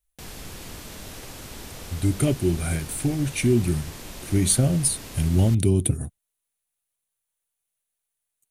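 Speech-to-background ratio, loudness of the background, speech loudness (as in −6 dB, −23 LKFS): 16.0 dB, −39.0 LKFS, −23.0 LKFS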